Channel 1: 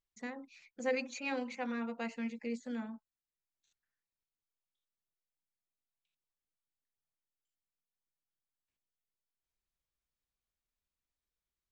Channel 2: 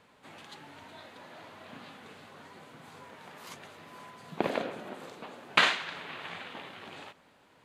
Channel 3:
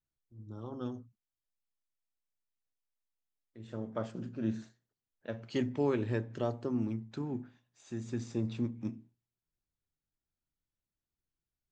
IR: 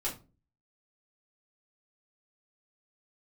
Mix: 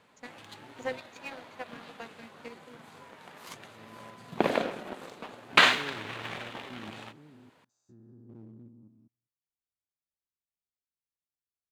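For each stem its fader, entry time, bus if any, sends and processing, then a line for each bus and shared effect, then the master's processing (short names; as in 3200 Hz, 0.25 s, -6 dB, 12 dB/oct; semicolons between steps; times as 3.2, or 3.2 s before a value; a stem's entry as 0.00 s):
-9.5 dB, 0.00 s, no send, HPF 330 Hz 12 dB/oct; transient shaper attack +9 dB, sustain -10 dB
+0.5 dB, 0.00 s, no send, dry
-11.0 dB, 0.00 s, no send, stepped spectrum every 0.2 s; treble ducked by the level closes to 790 Hz, closed at -36 dBFS; band shelf 2500 Hz -13 dB 1.2 oct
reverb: off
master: HPF 60 Hz 6 dB/oct; sample leveller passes 1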